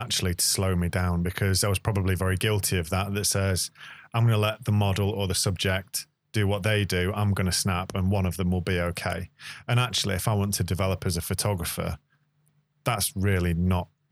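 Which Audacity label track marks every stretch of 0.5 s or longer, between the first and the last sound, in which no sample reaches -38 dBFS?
11.950000	12.860000	silence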